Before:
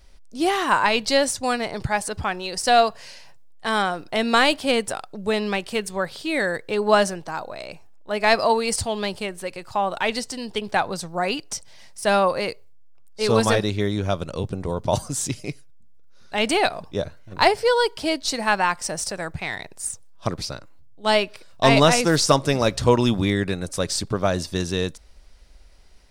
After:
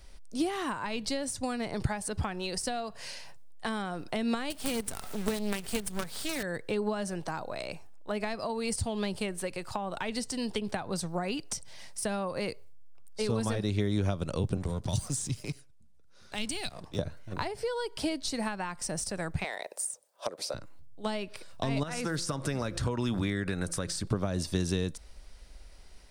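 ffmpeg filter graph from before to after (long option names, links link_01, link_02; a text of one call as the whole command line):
ffmpeg -i in.wav -filter_complex "[0:a]asettb=1/sr,asplit=3[link_01][link_02][link_03];[link_01]atrim=end=4.504[link_04];[link_02]atrim=start=4.5:end=6.43,asetpts=PTS-STARTPTS,afade=type=in:duration=0.004:curve=qsin,afade=type=out:start_time=1.926:duration=0.004:curve=qsin,aemphasis=mode=production:type=cd,aecho=1:1:4.5:0.34,atrim=end_sample=85113,acrusher=bits=4:dc=4:mix=0:aa=0.000001[link_05];[link_03]atrim=start=6.426[link_06];[link_04][link_05]acrossfade=duration=0.004:curve1=hsin:curve2=qsin[link_07];[link_07][link_06]acrossfade=duration=0.004:curve1=qsin:curve2=hsin,asettb=1/sr,asplit=3[link_08][link_09][link_10];[link_08]atrim=end=14.574[link_11];[link_09]atrim=start=14.57:end=16.99,asetpts=PTS-STARTPTS,afade=type=in:duration=0.004:curve=qsin,afade=type=out:start_time=2.416:duration=0.004:curve=qsin,lowpass=11000,acrossover=split=180|3000[link_12][link_13][link_14];[link_13]acompressor=threshold=-38dB:ratio=4:attack=3.2:release=140:knee=2.83:detection=peak[link_15];[link_12][link_15][link_14]amix=inputs=3:normalize=0,aeval=exprs='sgn(val(0))*max(abs(val(0))-0.00501,0)':channel_layout=same[link_16];[link_10]atrim=start=16.986[link_17];[link_11][link_16]acrossfade=duration=0.004:curve1=hsin:curve2=qsin[link_18];[link_18][link_17]acrossfade=duration=0.004:curve1=qsin:curve2=hsin,asettb=1/sr,asplit=3[link_19][link_20][link_21];[link_19]atrim=end=19.444[link_22];[link_20]atrim=start=19.44:end=20.54,asetpts=PTS-STARTPTS,afade=type=in:duration=0.004:curve=qsin,afade=type=out:start_time=1.096:duration=0.004:curve=qsin,highpass=frequency=550:width_type=q:width=3.7,highshelf=frequency=9000:gain=7.5[link_23];[link_21]atrim=start=20.536[link_24];[link_22][link_23]acrossfade=duration=0.004:curve1=hsin:curve2=qsin[link_25];[link_25][link_24]acrossfade=duration=0.004:curve1=qsin:curve2=hsin,asettb=1/sr,asplit=3[link_26][link_27][link_28];[link_26]atrim=end=21.834[link_29];[link_27]atrim=start=21.83:end=24.07,asetpts=PTS-STARTPTS,afade=type=in:duration=0.004:curve=qsin,afade=type=out:start_time=2.236:duration=0.004:curve=qsin,bandreject=frequency=170.2:width_type=h:width=4,bandreject=frequency=340.4:width_type=h:width=4,bandreject=frequency=510.6:width_type=h:width=4,acompressor=threshold=-27dB:ratio=3:attack=3.2:release=140:knee=1:detection=peak,equalizer=frequency=1500:width=1.8:gain=7.5[link_30];[link_28]atrim=start=24.066[link_31];[link_29][link_30]acrossfade=duration=0.004:curve1=hsin:curve2=qsin[link_32];[link_32][link_31]acrossfade=duration=0.004:curve1=qsin:curve2=hsin,acompressor=threshold=-22dB:ratio=6,equalizer=frequency=9000:width=4:gain=5,acrossover=split=300[link_33][link_34];[link_34]acompressor=threshold=-33dB:ratio=6[link_35];[link_33][link_35]amix=inputs=2:normalize=0" out.wav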